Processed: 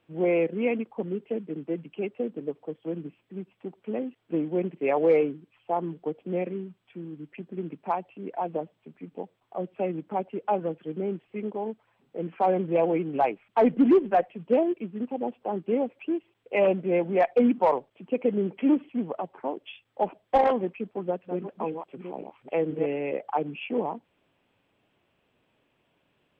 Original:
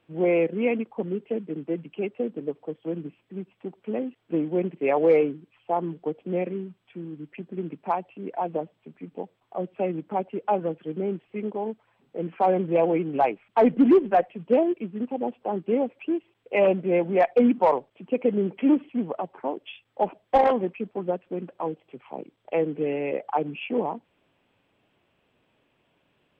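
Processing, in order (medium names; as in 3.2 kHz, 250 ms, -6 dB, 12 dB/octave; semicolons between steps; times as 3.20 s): 20.73–22.86 s: chunks repeated in reverse 494 ms, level -6 dB; trim -2 dB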